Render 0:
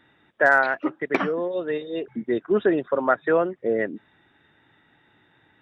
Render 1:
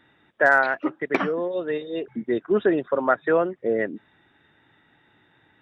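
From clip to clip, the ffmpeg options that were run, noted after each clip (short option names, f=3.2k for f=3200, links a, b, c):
-af anull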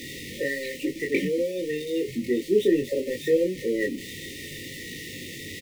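-af "aeval=exprs='val(0)+0.5*0.0335*sgn(val(0))':c=same,afftfilt=real='re*(1-between(b*sr/4096,570,1800))':imag='im*(1-between(b*sr/4096,570,1800))':win_size=4096:overlap=0.75,aecho=1:1:21|33:0.668|0.398,volume=-3.5dB"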